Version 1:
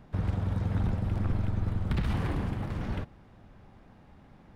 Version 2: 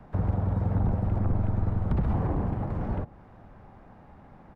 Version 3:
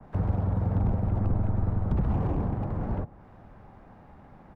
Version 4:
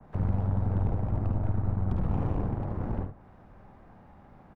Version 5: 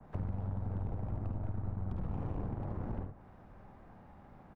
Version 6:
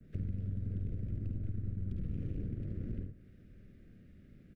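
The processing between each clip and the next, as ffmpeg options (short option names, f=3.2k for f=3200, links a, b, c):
-filter_complex "[0:a]firequalizer=gain_entry='entry(300,0);entry(750,5);entry(3300,-8)':delay=0.05:min_phase=1,acrossover=split=200|550|940[a][b][c][d];[d]acompressor=threshold=-54dB:ratio=6[e];[a][b][c][e]amix=inputs=4:normalize=0,volume=3dB"
-filter_complex "[0:a]acrossover=split=150|480[a][b][c];[c]volume=35.5dB,asoftclip=hard,volume=-35.5dB[d];[a][b][d]amix=inputs=3:normalize=0,adynamicequalizer=threshold=0.00178:dfrequency=1900:dqfactor=0.7:tfrequency=1900:tqfactor=0.7:attack=5:release=100:ratio=0.375:range=2.5:mode=cutabove:tftype=highshelf"
-filter_complex "[0:a]aeval=exprs='(tanh(12.6*val(0)+0.65)-tanh(0.65))/12.6':c=same,asplit=2[a][b];[b]aecho=0:1:53|74:0.376|0.355[c];[a][c]amix=inputs=2:normalize=0"
-af "acompressor=threshold=-32dB:ratio=3,volume=-2.5dB"
-af "asuperstop=centerf=900:order=4:qfactor=0.53"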